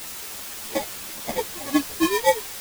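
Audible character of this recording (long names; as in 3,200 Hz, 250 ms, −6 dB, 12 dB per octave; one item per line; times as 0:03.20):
aliases and images of a low sample rate 1,400 Hz, jitter 0%
tremolo triangle 8 Hz, depth 85%
a quantiser's noise floor 6 bits, dither triangular
a shimmering, thickened sound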